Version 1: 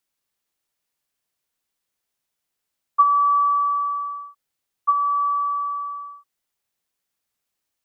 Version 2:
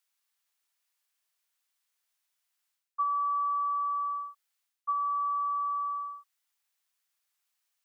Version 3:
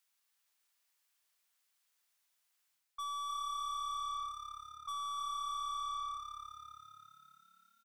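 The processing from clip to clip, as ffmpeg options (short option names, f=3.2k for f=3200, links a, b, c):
-af "highpass=960,areverse,acompressor=threshold=-30dB:ratio=4,areverse"
-filter_complex "[0:a]aeval=exprs='(tanh(100*val(0)+0.1)-tanh(0.1))/100':c=same,asplit=2[a][b];[b]asplit=7[c][d][e][f][g][h][i];[c]adelay=300,afreqshift=35,volume=-8dB[j];[d]adelay=600,afreqshift=70,volume=-13dB[k];[e]adelay=900,afreqshift=105,volume=-18.1dB[l];[f]adelay=1200,afreqshift=140,volume=-23.1dB[m];[g]adelay=1500,afreqshift=175,volume=-28.1dB[n];[h]adelay=1800,afreqshift=210,volume=-33.2dB[o];[i]adelay=2100,afreqshift=245,volume=-38.2dB[p];[j][k][l][m][n][o][p]amix=inputs=7:normalize=0[q];[a][q]amix=inputs=2:normalize=0,volume=1dB"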